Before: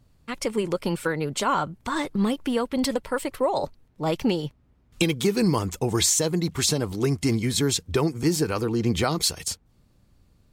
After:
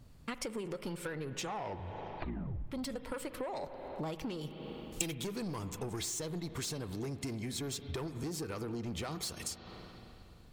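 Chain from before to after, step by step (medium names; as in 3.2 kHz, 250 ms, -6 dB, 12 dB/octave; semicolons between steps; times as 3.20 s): saturation -21 dBFS, distortion -12 dB; 1.19 s: tape stop 1.48 s; reverberation RT60 2.5 s, pre-delay 38 ms, DRR 12 dB; compression 16:1, threshold -39 dBFS, peak gain reduction 16.5 dB; 4.41–5.15 s: treble shelf 5.1 kHz +10 dB; trim +2.5 dB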